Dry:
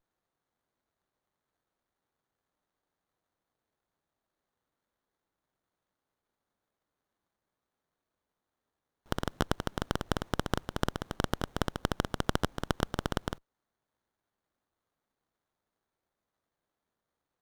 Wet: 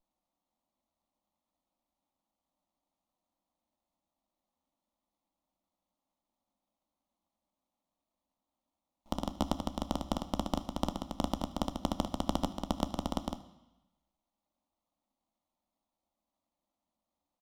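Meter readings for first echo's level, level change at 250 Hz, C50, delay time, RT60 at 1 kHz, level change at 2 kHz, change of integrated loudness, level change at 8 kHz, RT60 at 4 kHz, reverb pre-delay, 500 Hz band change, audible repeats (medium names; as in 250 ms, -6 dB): -21.5 dB, +1.0 dB, 15.0 dB, 76 ms, 1.1 s, -15.0 dB, -2.0 dB, -3.5 dB, 1.1 s, 3 ms, -3.0 dB, 1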